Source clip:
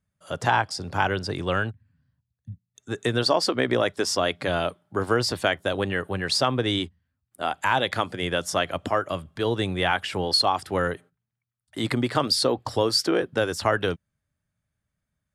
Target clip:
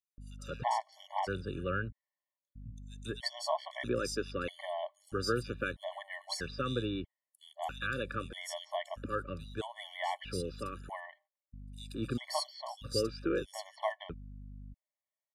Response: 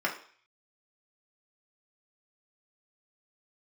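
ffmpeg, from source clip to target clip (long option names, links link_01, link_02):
-filter_complex "[0:a]aeval=exprs='val(0)+0.0141*(sin(2*PI*50*n/s)+sin(2*PI*2*50*n/s)/2+sin(2*PI*3*50*n/s)/3+sin(2*PI*4*50*n/s)/4+sin(2*PI*5*50*n/s)/5)':channel_layout=same,acrossover=split=3300[link_01][link_02];[link_01]adelay=180[link_03];[link_03][link_02]amix=inputs=2:normalize=0,afftfilt=real='re*gt(sin(2*PI*0.78*pts/sr)*(1-2*mod(floor(b*sr/1024/580),2)),0)':imag='im*gt(sin(2*PI*0.78*pts/sr)*(1-2*mod(floor(b*sr/1024/580),2)),0)':win_size=1024:overlap=0.75,volume=-9dB"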